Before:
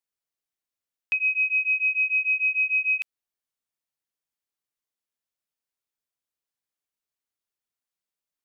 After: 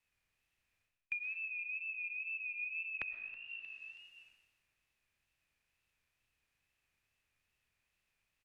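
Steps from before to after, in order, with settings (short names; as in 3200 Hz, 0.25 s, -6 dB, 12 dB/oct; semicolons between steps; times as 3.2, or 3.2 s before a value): per-bin compression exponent 0.6; bell 1800 Hz +5 dB 0.35 oct; frequency-shifting echo 0.316 s, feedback 54%, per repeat +53 Hz, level -19 dB; reverse; compressor 10:1, threshold -37 dBFS, peak gain reduction 17.5 dB; reverse; treble ducked by the level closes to 1800 Hz, closed at -39.5 dBFS; wow and flutter 74 cents; digital reverb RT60 1.4 s, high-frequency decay 0.9×, pre-delay 85 ms, DRR 8.5 dB; three-band expander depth 70%; gain +2.5 dB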